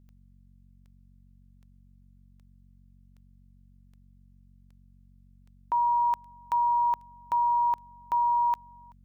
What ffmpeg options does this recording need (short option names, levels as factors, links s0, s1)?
-af "adeclick=t=4,bandreject=f=46.5:t=h:w=4,bandreject=f=93:t=h:w=4,bandreject=f=139.5:t=h:w=4,bandreject=f=186:t=h:w=4,bandreject=f=232.5:t=h:w=4"